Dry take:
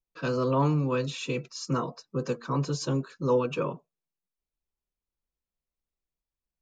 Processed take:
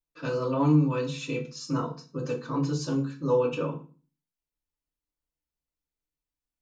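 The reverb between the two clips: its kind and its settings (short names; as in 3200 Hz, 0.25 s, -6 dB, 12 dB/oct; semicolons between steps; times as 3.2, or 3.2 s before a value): FDN reverb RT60 0.36 s, low-frequency decay 1.4×, high-frequency decay 0.9×, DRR -0.5 dB; gain -5 dB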